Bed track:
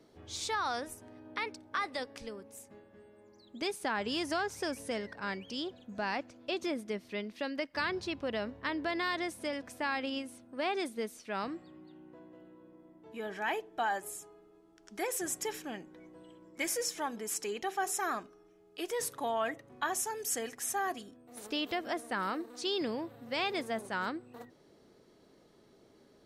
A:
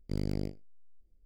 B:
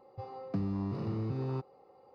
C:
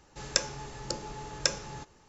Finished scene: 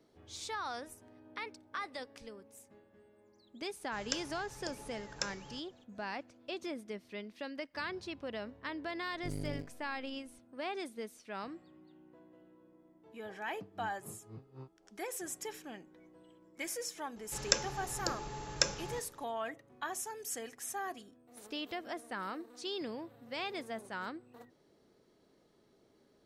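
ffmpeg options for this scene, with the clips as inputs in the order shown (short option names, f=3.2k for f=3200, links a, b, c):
-filter_complex "[3:a]asplit=2[a][b];[0:a]volume=-6dB[c];[1:a]aecho=1:1:7.1:0.97[d];[2:a]aeval=exprs='val(0)*pow(10,-22*(0.5-0.5*cos(2*PI*3.9*n/s))/20)':c=same[e];[a]atrim=end=2.08,asetpts=PTS-STARTPTS,volume=-10.5dB,afade=t=in:d=0.004:c=hsin,afade=t=out:st=2.076:d=0.004:c=hsin,adelay=3760[f];[d]atrim=end=1.25,asetpts=PTS-STARTPTS,volume=-9.5dB,afade=t=in:d=0.004:c=hsin,afade=t=out:st=1.246:d=0.004:c=hsin,adelay=403074S[g];[e]atrim=end=2.14,asetpts=PTS-STARTPTS,volume=-12dB,afade=t=in:d=0.004:c=hsin,afade=t=out:st=2.136:d=0.004:c=hsin,adelay=13070[h];[b]atrim=end=2.08,asetpts=PTS-STARTPTS,volume=-2dB,afade=t=in:d=0.004:c=hsin,afade=t=out:st=2.076:d=0.004:c=hsin,adelay=756756S[i];[c][f][g][h][i]amix=inputs=5:normalize=0"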